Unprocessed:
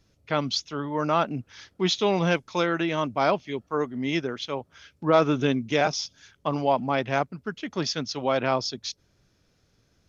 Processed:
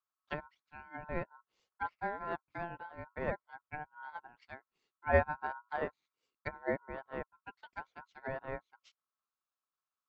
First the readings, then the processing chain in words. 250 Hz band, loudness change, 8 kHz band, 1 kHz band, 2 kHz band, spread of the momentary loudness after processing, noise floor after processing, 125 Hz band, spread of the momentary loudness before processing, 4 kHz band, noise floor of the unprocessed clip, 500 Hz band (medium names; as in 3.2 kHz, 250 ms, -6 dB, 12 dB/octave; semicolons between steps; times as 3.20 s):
-20.0 dB, -13.5 dB, no reading, -13.0 dB, -9.5 dB, 13 LU, under -85 dBFS, -14.0 dB, 10 LU, under -30 dB, -67 dBFS, -13.5 dB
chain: ring modulator 1.2 kHz; low-pass that closes with the level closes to 1.1 kHz, closed at -26 dBFS; upward expansion 2.5:1, over -41 dBFS